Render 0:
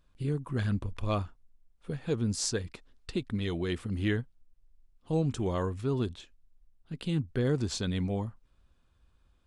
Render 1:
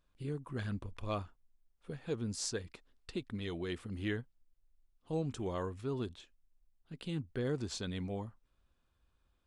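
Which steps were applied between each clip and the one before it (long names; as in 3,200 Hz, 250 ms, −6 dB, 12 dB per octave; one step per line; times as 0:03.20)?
bass and treble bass −4 dB, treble −1 dB
level −5.5 dB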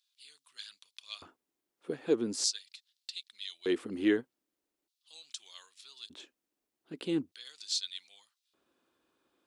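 auto-filter high-pass square 0.41 Hz 320–4,000 Hz
level +5 dB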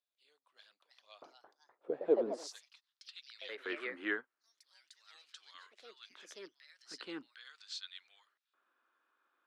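band-pass filter sweep 610 Hz → 1,400 Hz, 0:02.09–0:03.25
delay with pitch and tempo change per echo 414 ms, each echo +3 semitones, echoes 2, each echo −6 dB
high-pass filter 120 Hz
level +5.5 dB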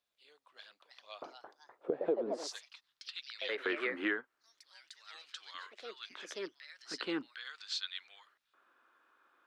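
high-shelf EQ 6,400 Hz −10 dB
downward compressor 5 to 1, threshold −40 dBFS, peak gain reduction 15.5 dB
level +9.5 dB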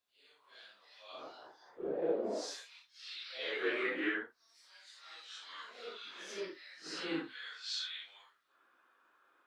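random phases in long frames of 200 ms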